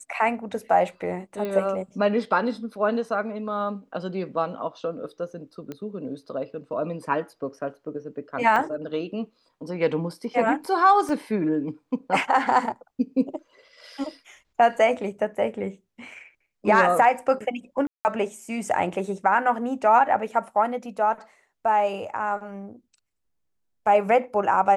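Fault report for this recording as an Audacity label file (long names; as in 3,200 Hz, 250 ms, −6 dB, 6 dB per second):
1.450000	1.450000	click −19 dBFS
5.720000	5.720000	click −22 dBFS
8.560000	8.560000	drop-out 2.5 ms
11.090000	11.090000	drop-out 2.1 ms
17.870000	18.050000	drop-out 179 ms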